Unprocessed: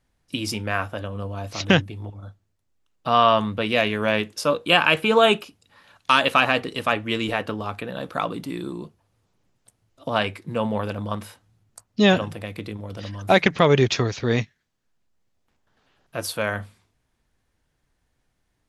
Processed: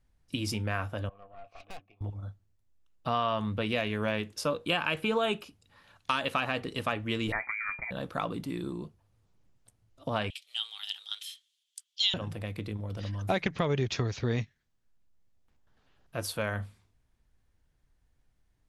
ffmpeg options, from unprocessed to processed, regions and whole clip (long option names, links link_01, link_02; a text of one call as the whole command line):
ffmpeg -i in.wav -filter_complex "[0:a]asettb=1/sr,asplit=3[link_01][link_02][link_03];[link_01]atrim=end=1.094[link_04];[link_02]atrim=start=1.09:end=2.01,asetpts=PTS-STARTPTS,afade=type=in:duration=0.004:curve=qsin,afade=type=out:start_time=0.916:duration=0.004:curve=qsin,asplit=3[link_05][link_06][link_07];[link_05]bandpass=frequency=730:width_type=q:width=8,volume=0dB[link_08];[link_06]bandpass=frequency=1090:width_type=q:width=8,volume=-6dB[link_09];[link_07]bandpass=frequency=2440:width_type=q:width=8,volume=-9dB[link_10];[link_08][link_09][link_10]amix=inputs=3:normalize=0,equalizer=frequency=2000:width_type=o:width=0.41:gain=10.5,aeval=exprs='(tanh(63.1*val(0)+0.5)-tanh(0.5))/63.1':channel_layout=same[link_11];[link_03]atrim=start=2.006[link_12];[link_04][link_11]acrossfade=duration=0.004:curve1=hsin:curve2=qsin[link_13];[link_13][link_12]acrossfade=duration=0.004:curve1=qsin:curve2=hsin,asettb=1/sr,asplit=3[link_14][link_15][link_16];[link_14]atrim=end=7.324[link_17];[link_15]atrim=start=7.32:end=7.91,asetpts=PTS-STARTPTS,afade=type=in:duration=0.004:curve=qsin,afade=type=out:start_time=0.586:duration=0.004:curve=qsin,asubboost=boost=9.5:cutoff=200,lowpass=frequency=2100:width_type=q:width=0.5098,lowpass=frequency=2100:width_type=q:width=0.6013,lowpass=frequency=2100:width_type=q:width=0.9,lowpass=frequency=2100:width_type=q:width=2.563,afreqshift=-2500[link_18];[link_16]atrim=start=7.906[link_19];[link_17][link_18]acrossfade=duration=0.004:curve1=hsin:curve2=qsin[link_20];[link_20][link_19]acrossfade=duration=0.004:curve1=qsin:curve2=hsin,asettb=1/sr,asplit=3[link_21][link_22][link_23];[link_21]atrim=end=10.304[link_24];[link_22]atrim=start=10.3:end=12.14,asetpts=PTS-STARTPTS,afade=type=in:duration=0.004:curve=qsin,afade=type=out:start_time=1.836:duration=0.004:curve=qsin,highpass=frequency=3000:width_type=q:width=7.1,equalizer=frequency=7200:width_type=o:width=1.4:gain=6,afreqshift=260[link_25];[link_23]atrim=start=12.136[link_26];[link_24][link_25]acrossfade=duration=0.004:curve1=hsin:curve2=qsin[link_27];[link_27][link_26]acrossfade=duration=0.004:curve1=qsin:curve2=hsin,lowshelf=frequency=110:gain=11.5,acompressor=threshold=-19dB:ratio=4,volume=-6.5dB" out.wav